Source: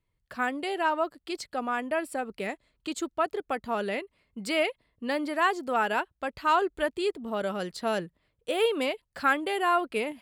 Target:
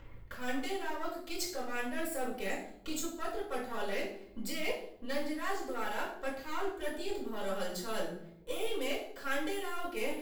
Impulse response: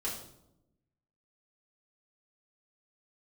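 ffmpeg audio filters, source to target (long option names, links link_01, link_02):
-filter_complex "[0:a]aeval=exprs='if(lt(val(0),0),0.447*val(0),val(0))':channel_layout=same,acrossover=split=2400[link_01][link_02];[link_01]acompressor=mode=upward:threshold=-33dB:ratio=2.5[link_03];[link_03][link_02]amix=inputs=2:normalize=0,equalizer=frequency=9500:width_type=o:width=0.22:gain=-10.5,areverse,acompressor=threshold=-36dB:ratio=6,areverse,aemphasis=mode=production:type=75kf,bandreject=frequency=163.6:width_type=h:width=4,bandreject=frequency=327.2:width_type=h:width=4,bandreject=frequency=490.8:width_type=h:width=4,bandreject=frequency=654.4:width_type=h:width=4,bandreject=frequency=818:width_type=h:width=4,bandreject=frequency=981.6:width_type=h:width=4,bandreject=frequency=1145.2:width_type=h:width=4,bandreject=frequency=1308.8:width_type=h:width=4,bandreject=frequency=1472.4:width_type=h:width=4,bandreject=frequency=1636:width_type=h:width=4,bandreject=frequency=1799.6:width_type=h:width=4,bandreject=frequency=1963.2:width_type=h:width=4,bandreject=frequency=2126.8:width_type=h:width=4,bandreject=frequency=2290.4:width_type=h:width=4,bandreject=frequency=2454:width_type=h:width=4,bandreject=frequency=2617.6:width_type=h:width=4,bandreject=frequency=2781.2:width_type=h:width=4,bandreject=frequency=2944.8:width_type=h:width=4,bandreject=frequency=3108.4:width_type=h:width=4,bandreject=frequency=3272:width_type=h:width=4,bandreject=frequency=3435.6:width_type=h:width=4,bandreject=frequency=3599.2:width_type=h:width=4,bandreject=frequency=3762.8:width_type=h:width=4,bandreject=frequency=3926.4:width_type=h:width=4,bandreject=frequency=4090:width_type=h:width=4,bandreject=frequency=4253.6:width_type=h:width=4,bandreject=frequency=4417.2:width_type=h:width=4,bandreject=frequency=4580.8:width_type=h:width=4,bandreject=frequency=4744.4:width_type=h:width=4,bandreject=frequency=4908:width_type=h:width=4,bandreject=frequency=5071.6:width_type=h:width=4,bandreject=frequency=5235.2:width_type=h:width=4,bandreject=frequency=5398.8:width_type=h:width=4[link_04];[1:a]atrim=start_sample=2205,asetrate=52920,aresample=44100[link_05];[link_04][link_05]afir=irnorm=-1:irlink=0"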